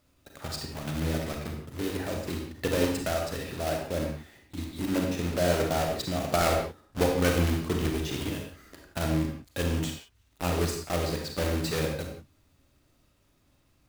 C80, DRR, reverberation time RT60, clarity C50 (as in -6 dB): 6.0 dB, 1.0 dB, no single decay rate, 3.0 dB